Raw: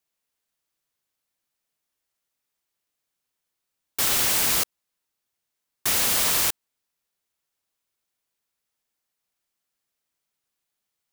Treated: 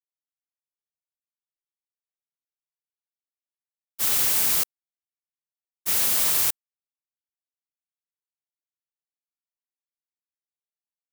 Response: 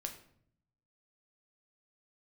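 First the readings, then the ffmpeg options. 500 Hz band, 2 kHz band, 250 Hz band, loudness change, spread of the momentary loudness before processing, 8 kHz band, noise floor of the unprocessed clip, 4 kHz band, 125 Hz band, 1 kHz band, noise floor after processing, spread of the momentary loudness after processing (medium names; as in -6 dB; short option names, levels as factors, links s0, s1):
-5.5 dB, -5.0 dB, -5.5 dB, +0.5 dB, 11 LU, -1.5 dB, -82 dBFS, -4.0 dB, -5.5 dB, -5.5 dB, under -85 dBFS, 11 LU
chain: -af "agate=range=0.0224:threshold=0.158:ratio=3:detection=peak,highshelf=f=8000:g=8"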